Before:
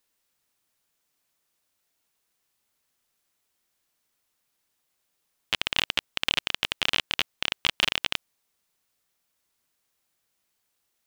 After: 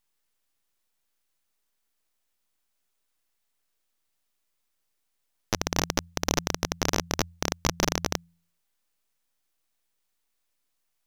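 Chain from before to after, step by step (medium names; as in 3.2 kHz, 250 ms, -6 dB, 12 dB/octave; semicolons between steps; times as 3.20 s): full-wave rectifier; de-hum 84.92 Hz, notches 2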